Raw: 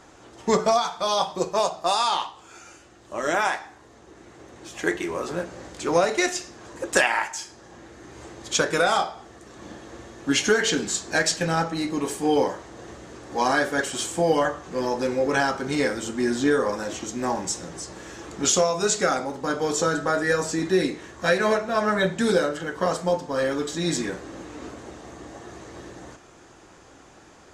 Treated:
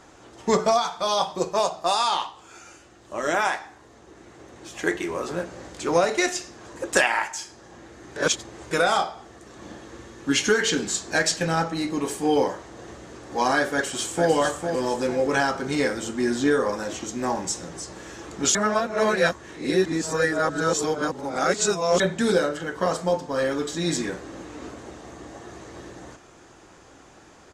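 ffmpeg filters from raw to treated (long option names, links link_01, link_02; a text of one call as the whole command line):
ffmpeg -i in.wav -filter_complex "[0:a]asettb=1/sr,asplit=3[link_01][link_02][link_03];[link_01]atrim=end=9.864[link_04];[link_02]atrim=start=9.86:end=10.76,asetpts=PTS-STARTPTS,afade=type=in:duration=0.004:curve=qsin,afade=type=out:start_time=0.896:duration=0.004:curve=qsin,equalizer=frequency=670:width=4.5:gain=-8[link_05];[link_03]atrim=start=10.756[link_06];[link_04][link_05]acrossfade=duration=0.004:curve1=hsin:curve2=qsin[link_07];[link_07][link_06]acrossfade=duration=0.004:curve1=qsin:curve2=hsin,asplit=2[link_08][link_09];[link_09]afade=type=in:start_time=13.71:duration=0.01,afade=type=out:start_time=14.3:duration=0.01,aecho=0:1:450|900|1350|1800|2250:0.501187|0.200475|0.08019|0.032076|0.0128304[link_10];[link_08][link_10]amix=inputs=2:normalize=0,asplit=5[link_11][link_12][link_13][link_14][link_15];[link_11]atrim=end=8.162[link_16];[link_12]atrim=start=8.158:end=8.712,asetpts=PTS-STARTPTS,areverse[link_17];[link_13]atrim=start=8.708:end=18.552[link_18];[link_14]atrim=start=18.548:end=22.002,asetpts=PTS-STARTPTS,areverse[link_19];[link_15]atrim=start=21.998[link_20];[link_16][link_17]acrossfade=duration=0.004:curve1=hsin:curve2=hsin[link_21];[link_21][link_18]acrossfade=duration=0.004:curve1=hsin:curve2=hsin[link_22];[link_22][link_19]acrossfade=duration=0.004:curve1=hsin:curve2=hsin[link_23];[link_23][link_20]acrossfade=duration=0.004:curve1=hsin:curve2=hsin" out.wav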